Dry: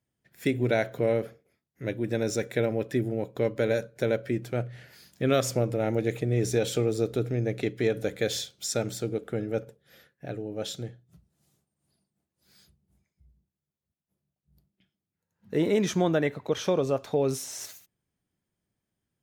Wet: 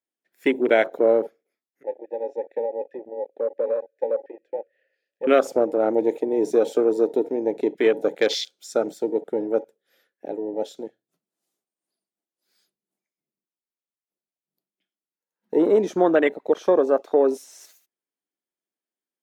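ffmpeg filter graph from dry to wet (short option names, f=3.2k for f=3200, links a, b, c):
-filter_complex "[0:a]asettb=1/sr,asplit=3[a][b][c];[a]atrim=end=1.834[d];[b]atrim=start=1.83:end=5.27,asetpts=PTS-STARTPTS,afade=t=in:d=0.004:c=qsin,afade=t=out:st=3.436:d=0.004:c=qsin,asplit=3[e][f][g];[e]bandpass=f=530:t=q:w=8,volume=0dB[h];[f]bandpass=f=1.84k:t=q:w=8,volume=-6dB[i];[g]bandpass=f=2.48k:t=q:w=8,volume=-9dB[j];[h][i][j]amix=inputs=3:normalize=0,highshelf=f=5.4k:g=-5.5[k];[c]atrim=start=5.266[l];[d][k]acrossfade=d=0.004:c1=hsin:c2=qsin[m];[m][l]acrossfade=d=0.004:c1=qsin:c2=hsin,highpass=f=280:w=0.5412,highpass=f=280:w=1.3066,afwtdn=0.0178,volume=8dB"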